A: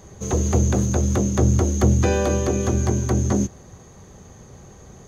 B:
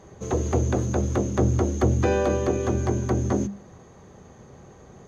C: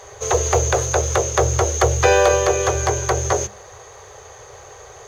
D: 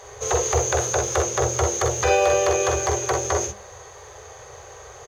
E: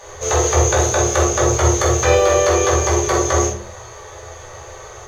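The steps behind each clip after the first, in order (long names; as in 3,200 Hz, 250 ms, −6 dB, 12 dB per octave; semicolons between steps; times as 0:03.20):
low-pass filter 2,200 Hz 6 dB per octave; low-shelf EQ 90 Hz −9.5 dB; mains-hum notches 50/100/150/200 Hz
drawn EQ curve 110 Hz 0 dB, 170 Hz −20 dB, 270 Hz −24 dB, 420 Hz +6 dB, 6,000 Hz +14 dB; log-companded quantiser 8 bits; level +3 dB
brickwall limiter −8.5 dBFS, peak gain reduction 7 dB; ambience of single reflections 46 ms −6 dB, 60 ms −9 dB; level −2.5 dB
rectangular room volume 250 cubic metres, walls furnished, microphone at 2.5 metres; level +1.5 dB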